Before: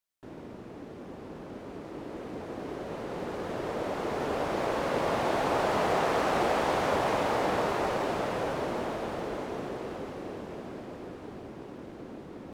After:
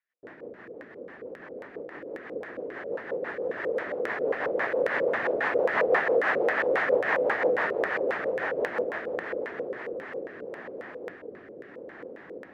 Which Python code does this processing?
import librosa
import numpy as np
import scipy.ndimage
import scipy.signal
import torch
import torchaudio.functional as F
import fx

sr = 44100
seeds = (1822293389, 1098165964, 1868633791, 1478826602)

y = fx.rotary_switch(x, sr, hz=6.0, then_hz=0.8, switch_at_s=9.52)
y = fx.filter_lfo_lowpass(y, sr, shape='square', hz=3.7, low_hz=500.0, high_hz=1800.0, q=6.4)
y = fx.riaa(y, sr, side='recording')